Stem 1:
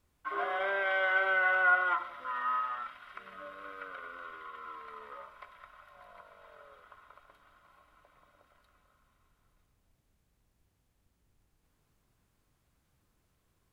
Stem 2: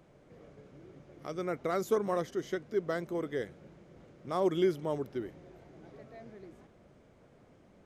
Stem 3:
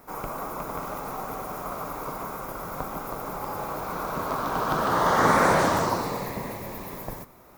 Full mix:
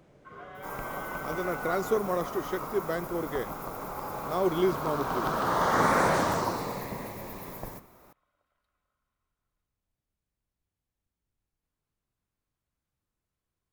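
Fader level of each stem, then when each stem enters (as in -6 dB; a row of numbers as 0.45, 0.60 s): -13.0, +2.0, -4.0 dB; 0.00, 0.00, 0.55 s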